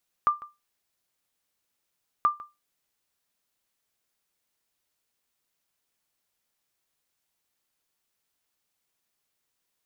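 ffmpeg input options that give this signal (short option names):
-f lavfi -i "aevalsrc='0.211*(sin(2*PI*1190*mod(t,1.98))*exp(-6.91*mod(t,1.98)/0.22)+0.112*sin(2*PI*1190*max(mod(t,1.98)-0.15,0))*exp(-6.91*max(mod(t,1.98)-0.15,0)/0.22))':d=3.96:s=44100"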